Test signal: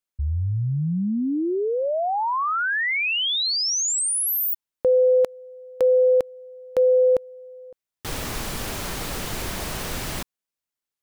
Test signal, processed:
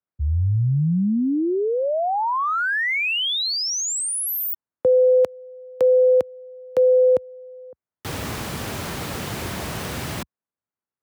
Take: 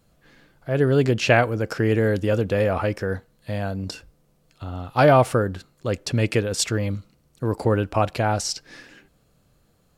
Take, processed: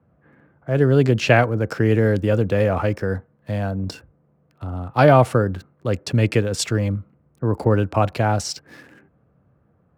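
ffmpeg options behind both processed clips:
-filter_complex "[0:a]highpass=f=69:w=0.5412,highpass=f=69:w=1.3066,bass=f=250:g=3,treble=f=4k:g=-3,acrossover=split=210|1500|1600[a][b][c][d];[d]aeval=exprs='sgn(val(0))*max(abs(val(0))-0.00211,0)':c=same[e];[a][b][c][e]amix=inputs=4:normalize=0,volume=1.5dB"

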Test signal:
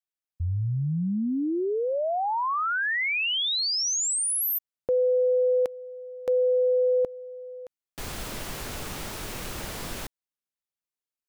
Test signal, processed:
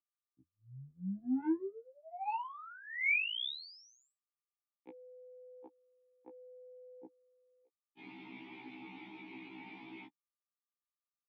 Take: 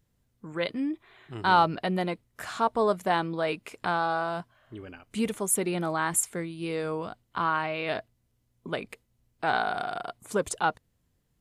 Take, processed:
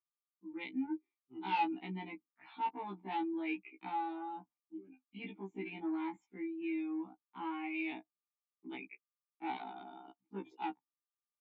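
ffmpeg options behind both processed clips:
-filter_complex "[0:a]afftdn=nr=25:nf=-41,agate=range=-28dB:threshold=-39dB:ratio=3:release=250:detection=rms,aeval=exprs='val(0)+0.00158*sin(2*PI*1200*n/s)':c=same,asplit=3[a][b][c];[a]bandpass=f=300:t=q:w=8,volume=0dB[d];[b]bandpass=f=870:t=q:w=8,volume=-6dB[e];[c]bandpass=f=2.24k:t=q:w=8,volume=-9dB[f];[d][e][f]amix=inputs=3:normalize=0,aresample=16000,asoftclip=type=tanh:threshold=-29.5dB,aresample=44100,highpass=f=150:w=0.5412,highpass=f=150:w=1.3066,equalizer=f=170:t=q:w=4:g=4,equalizer=f=490:t=q:w=4:g=-7,equalizer=f=1.1k:t=q:w=4:g=-6,equalizer=f=1.7k:t=q:w=4:g=7,equalizer=f=2.4k:t=q:w=4:g=6,equalizer=f=3.5k:t=q:w=4:g=10,lowpass=f=4.7k:w=0.5412,lowpass=f=4.7k:w=1.3066,afftfilt=real='re*1.73*eq(mod(b,3),0)':imag='im*1.73*eq(mod(b,3),0)':win_size=2048:overlap=0.75,volume=3.5dB"

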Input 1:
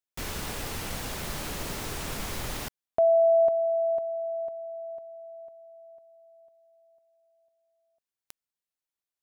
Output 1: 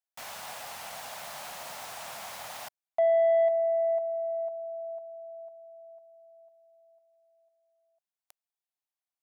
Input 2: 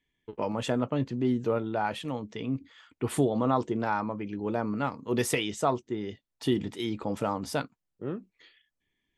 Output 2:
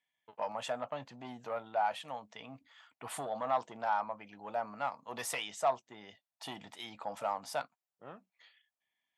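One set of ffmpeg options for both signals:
-af "asoftclip=type=tanh:threshold=-19dB,highpass=140,lowshelf=f=510:t=q:w=3:g=-10.5,volume=-5.5dB"

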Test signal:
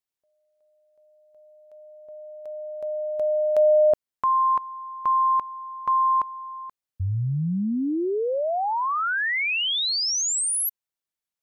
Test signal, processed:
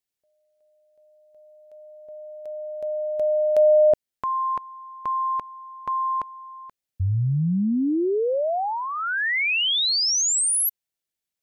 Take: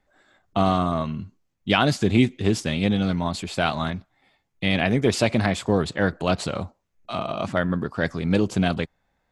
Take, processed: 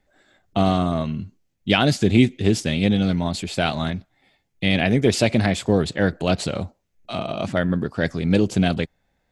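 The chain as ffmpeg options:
-af "equalizer=f=1.1k:t=o:w=0.86:g=-7.5,volume=3dB"

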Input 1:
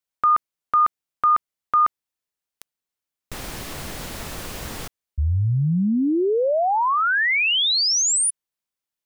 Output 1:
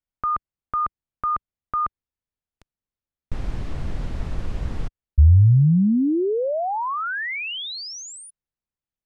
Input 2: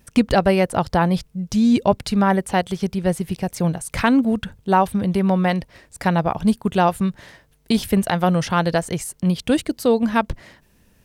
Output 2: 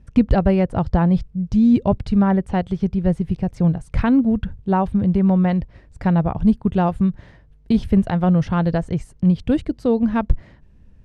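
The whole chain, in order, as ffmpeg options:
-af "lowpass=10k,aemphasis=mode=reproduction:type=riaa,volume=-5.5dB"

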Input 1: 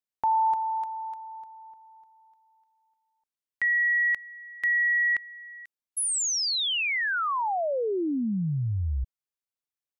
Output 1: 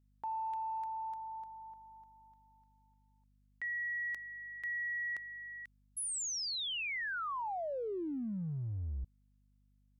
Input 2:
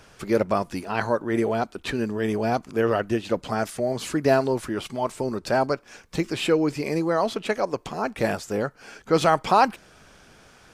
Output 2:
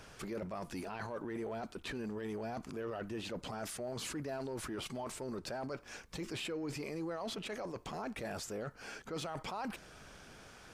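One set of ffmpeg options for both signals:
-af "areverse,acompressor=threshold=-33dB:ratio=10:attack=0.42:release=24:knee=6:detection=rms,areverse,aeval=exprs='val(0)+0.000501*(sin(2*PI*50*n/s)+sin(2*PI*2*50*n/s)/2+sin(2*PI*3*50*n/s)/3+sin(2*PI*4*50*n/s)/4+sin(2*PI*5*50*n/s)/5)':c=same,volume=-3dB"

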